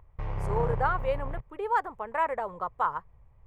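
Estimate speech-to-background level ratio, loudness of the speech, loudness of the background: 4.0 dB, -31.0 LUFS, -35.0 LUFS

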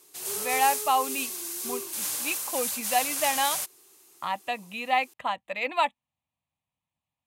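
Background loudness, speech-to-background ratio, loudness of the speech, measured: -29.5 LUFS, 0.5 dB, -29.0 LUFS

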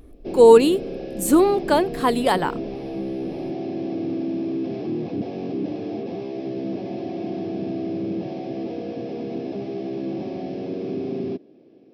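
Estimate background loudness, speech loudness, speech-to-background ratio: -29.5 LUFS, -17.5 LUFS, 12.0 dB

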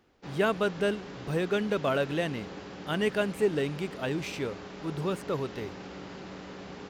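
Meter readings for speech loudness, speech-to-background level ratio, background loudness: -31.0 LUFS, 12.0 dB, -43.0 LUFS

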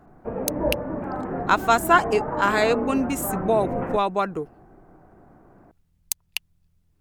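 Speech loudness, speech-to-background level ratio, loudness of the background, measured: -24.0 LUFS, 5.5 dB, -29.5 LUFS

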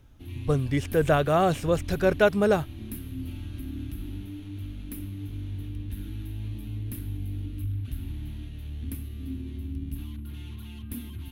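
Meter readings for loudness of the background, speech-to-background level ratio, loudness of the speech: -37.0 LUFS, 12.5 dB, -24.5 LUFS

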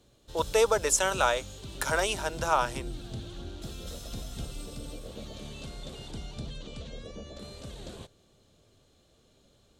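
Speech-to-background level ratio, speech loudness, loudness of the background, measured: 14.5 dB, -27.5 LUFS, -42.0 LUFS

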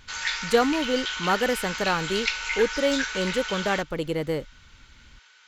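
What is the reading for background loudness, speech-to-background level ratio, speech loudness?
-29.0 LUFS, 2.5 dB, -26.5 LUFS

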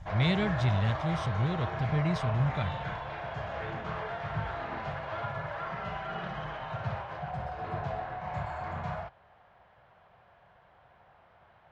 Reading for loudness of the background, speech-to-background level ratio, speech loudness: -36.5 LUFS, 6.0 dB, -30.5 LUFS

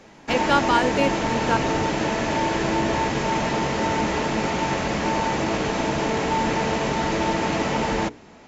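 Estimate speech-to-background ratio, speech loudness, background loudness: -0.5 dB, -24.0 LUFS, -23.5 LUFS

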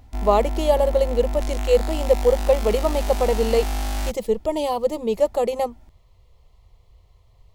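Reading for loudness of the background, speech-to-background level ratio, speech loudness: -28.0 LUFS, 6.0 dB, -22.0 LUFS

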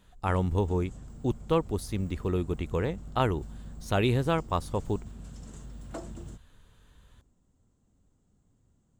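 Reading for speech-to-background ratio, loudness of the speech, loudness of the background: 16.0 dB, -30.0 LUFS, -46.0 LUFS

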